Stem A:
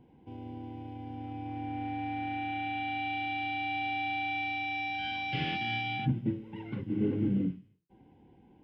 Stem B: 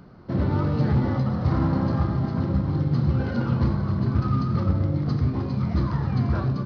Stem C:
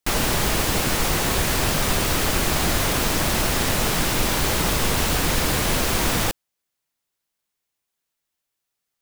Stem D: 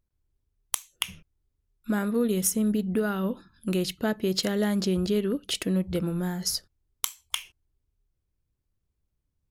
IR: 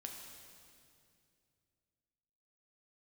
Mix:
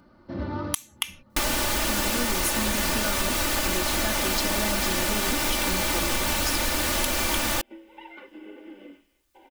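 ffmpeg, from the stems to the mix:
-filter_complex "[0:a]highpass=frequency=450:width=0.5412,highpass=frequency=450:width=1.3066,acompressor=mode=upward:threshold=-34dB:ratio=2.5,adelay=1450,volume=-3dB[link_01];[1:a]volume=-5dB[link_02];[2:a]adelay=1300,volume=2.5dB[link_03];[3:a]volume=2.5dB,asplit=2[link_04][link_05];[link_05]apad=whole_len=293367[link_06];[link_02][link_06]sidechaincompress=threshold=-47dB:ratio=8:attack=11:release=754[link_07];[link_01][link_07][link_03][link_04]amix=inputs=4:normalize=0,lowshelf=frequency=380:gain=-5,aecho=1:1:3.4:0.69,acompressor=threshold=-22dB:ratio=5"

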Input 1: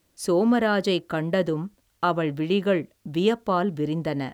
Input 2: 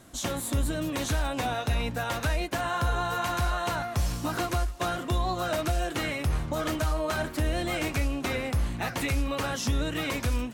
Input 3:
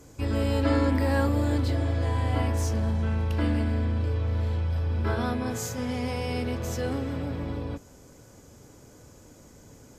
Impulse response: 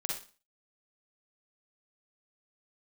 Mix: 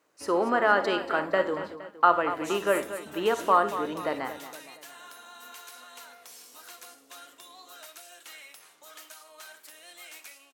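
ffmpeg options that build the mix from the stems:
-filter_complex "[0:a]equalizer=frequency=1200:width=0.87:gain=10,bandreject=frequency=3400:width=12,volume=-6dB,asplit=4[link_01][link_02][link_03][link_04];[link_02]volume=-9.5dB[link_05];[link_03]volume=-9.5dB[link_06];[1:a]aderivative,adelay=2300,volume=-4dB,asplit=2[link_07][link_08];[link_08]volume=-11.5dB[link_09];[2:a]acompressor=threshold=-39dB:ratio=2.5,volume=-1.5dB,asplit=2[link_10][link_11];[link_11]volume=-20dB[link_12];[link_04]apad=whole_len=440442[link_13];[link_10][link_13]sidechaingate=range=-33dB:threshold=-45dB:ratio=16:detection=peak[link_14];[3:a]atrim=start_sample=2205[link_15];[link_05][link_09][link_12]amix=inputs=3:normalize=0[link_16];[link_16][link_15]afir=irnorm=-1:irlink=0[link_17];[link_06]aecho=0:1:233|466|699|932|1165|1398:1|0.46|0.212|0.0973|0.0448|0.0206[link_18];[link_01][link_07][link_14][link_17][link_18]amix=inputs=5:normalize=0,highpass=390,highshelf=frequency=3800:gain=-7"

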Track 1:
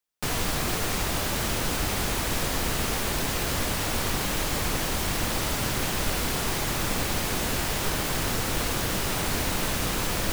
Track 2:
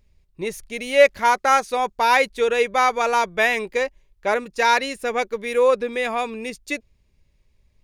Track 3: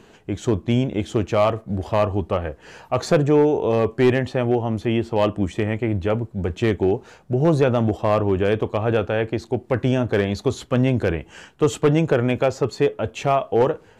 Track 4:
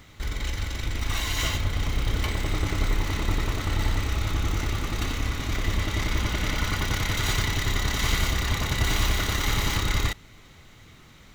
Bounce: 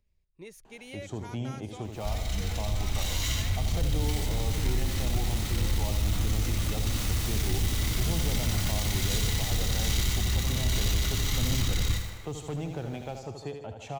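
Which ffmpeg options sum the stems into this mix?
ffmpeg -i stem1.wav -i stem2.wav -i stem3.wav -i stem4.wav -filter_complex "[0:a]dynaudnorm=framelen=380:gausssize=13:maxgain=11.5dB,adelay=1700,volume=-16dB,asplit=2[link_01][link_02];[link_02]volume=-4dB[link_03];[1:a]acompressor=threshold=-28dB:ratio=2,volume=-14dB,asplit=2[link_04][link_05];[2:a]equalizer=frequency=790:width_type=o:width=0.62:gain=14,adelay=650,volume=-13dB,asplit=2[link_06][link_07];[link_07]volume=-7.5dB[link_08];[3:a]adelay=1850,volume=-0.5dB,asplit=2[link_09][link_10];[link_10]volume=-9dB[link_11];[link_05]apad=whole_len=530169[link_12];[link_01][link_12]sidechaincompress=threshold=-59dB:ratio=8:attack=16:release=171[link_13];[link_03][link_08][link_11]amix=inputs=3:normalize=0,aecho=0:1:77|154|231|308|385|462|539|616:1|0.53|0.281|0.149|0.0789|0.0418|0.0222|0.0117[link_14];[link_13][link_04][link_06][link_09][link_14]amix=inputs=5:normalize=0,acrossover=split=240|3000[link_15][link_16][link_17];[link_16]acompressor=threshold=-44dB:ratio=2.5[link_18];[link_15][link_18][link_17]amix=inputs=3:normalize=0,asoftclip=type=tanh:threshold=-17.5dB" out.wav

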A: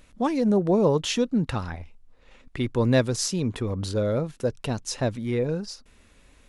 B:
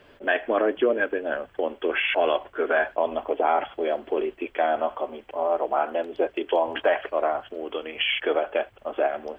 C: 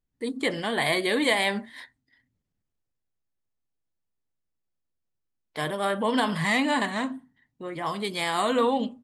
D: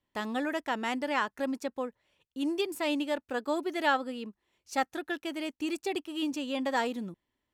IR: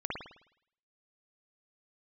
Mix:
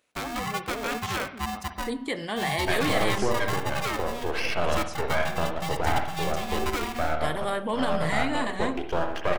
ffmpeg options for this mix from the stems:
-filter_complex "[0:a]highpass=400,volume=-12.5dB[link_01];[1:a]aeval=exprs='max(val(0),0)':channel_layout=same,adelay=2400,volume=-4.5dB,asplit=2[link_02][link_03];[link_03]volume=-5.5dB[link_04];[2:a]alimiter=limit=-18dB:level=0:latency=1:release=202,adelay=1650,volume=-1dB[link_05];[3:a]acrossover=split=370|3000[link_06][link_07][link_08];[link_06]acompressor=threshold=-35dB:ratio=6[link_09];[link_09][link_07][link_08]amix=inputs=3:normalize=0,alimiter=limit=-21dB:level=0:latency=1:release=133,aeval=exprs='val(0)*sgn(sin(2*PI*480*n/s))':channel_layout=same,volume=0dB,asplit=2[link_10][link_11];[link_11]volume=-13dB[link_12];[4:a]atrim=start_sample=2205[link_13];[link_04][link_12]amix=inputs=2:normalize=0[link_14];[link_14][link_13]afir=irnorm=-1:irlink=0[link_15];[link_01][link_02][link_05][link_10][link_15]amix=inputs=5:normalize=0,bandreject=frequency=194.4:width_type=h:width=4,bandreject=frequency=388.8:width_type=h:width=4,bandreject=frequency=583.2:width_type=h:width=4,bandreject=frequency=777.6:width_type=h:width=4,bandreject=frequency=972:width_type=h:width=4,bandreject=frequency=1166.4:width_type=h:width=4,bandreject=frequency=1360.8:width_type=h:width=4,bandreject=frequency=1555.2:width_type=h:width=4,bandreject=frequency=1749.6:width_type=h:width=4,bandreject=frequency=1944:width_type=h:width=4,bandreject=frequency=2138.4:width_type=h:width=4,bandreject=frequency=2332.8:width_type=h:width=4,bandreject=frequency=2527.2:width_type=h:width=4,bandreject=frequency=2721.6:width_type=h:width=4,bandreject=frequency=2916:width_type=h:width=4,bandreject=frequency=3110.4:width_type=h:width=4,bandreject=frequency=3304.8:width_type=h:width=4,bandreject=frequency=3499.2:width_type=h:width=4,bandreject=frequency=3693.6:width_type=h:width=4,bandreject=frequency=3888:width_type=h:width=4,bandreject=frequency=4082.4:width_type=h:width=4,bandreject=frequency=4276.8:width_type=h:width=4,bandreject=frequency=4471.2:width_type=h:width=4,bandreject=frequency=4665.6:width_type=h:width=4,bandreject=frequency=4860:width_type=h:width=4,bandreject=frequency=5054.4:width_type=h:width=4,bandreject=frequency=5248.8:width_type=h:width=4,bandreject=frequency=5443.2:width_type=h:width=4,bandreject=frequency=5637.6:width_type=h:width=4,bandreject=frequency=5832:width_type=h:width=4"

